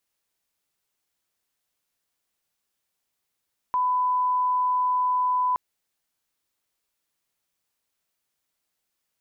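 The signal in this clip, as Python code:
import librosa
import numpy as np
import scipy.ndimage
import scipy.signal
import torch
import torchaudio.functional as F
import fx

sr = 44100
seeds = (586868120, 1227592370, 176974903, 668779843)

y = fx.lineup_tone(sr, length_s=1.82, level_db=-20.0)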